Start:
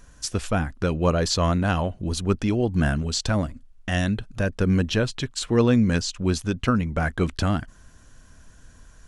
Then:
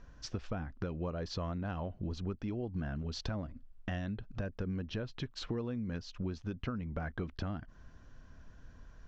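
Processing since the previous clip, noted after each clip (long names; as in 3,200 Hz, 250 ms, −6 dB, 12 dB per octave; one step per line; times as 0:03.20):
Butterworth low-pass 5,900 Hz 36 dB per octave
high-shelf EQ 2,400 Hz −10 dB
downward compressor 10 to 1, threshold −30 dBFS, peak gain reduction 16.5 dB
level −4 dB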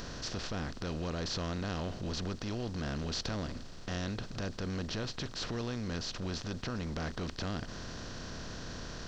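compressor on every frequency bin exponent 0.4
high-shelf EQ 3,900 Hz +11.5 dB
transient designer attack −5 dB, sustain +1 dB
level −3.5 dB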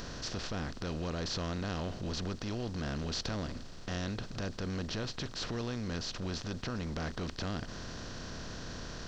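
no processing that can be heard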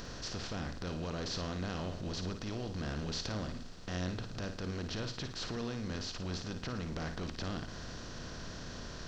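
flutter between parallel walls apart 9.5 metres, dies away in 0.41 s
level −2.5 dB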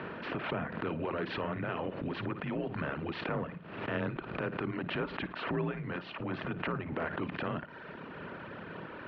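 single-sideband voice off tune −73 Hz 230–2,700 Hz
reverb reduction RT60 1.6 s
background raised ahead of every attack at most 61 dB per second
level +9 dB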